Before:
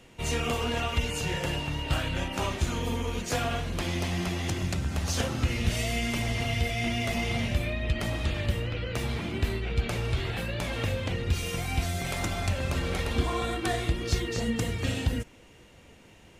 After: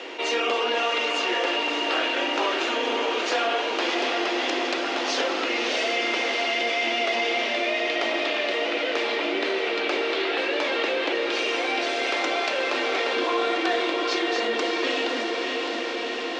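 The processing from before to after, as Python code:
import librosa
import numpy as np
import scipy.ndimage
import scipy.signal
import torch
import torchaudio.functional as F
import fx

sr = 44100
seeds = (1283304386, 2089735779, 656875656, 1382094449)

p1 = fx.rider(x, sr, range_db=10, speed_s=2.0)
p2 = x + (p1 * librosa.db_to_amplitude(-2.0))
p3 = scipy.signal.sosfilt(scipy.signal.butter(8, 300.0, 'highpass', fs=sr, output='sos'), p2)
p4 = fx.echo_diffused(p3, sr, ms=622, feedback_pct=67, wet_db=-6.0)
p5 = fx.quant_float(p4, sr, bits=4)
p6 = scipy.signal.sosfilt(scipy.signal.butter(4, 5000.0, 'lowpass', fs=sr, output='sos'), p5)
y = fx.env_flatten(p6, sr, amount_pct=50)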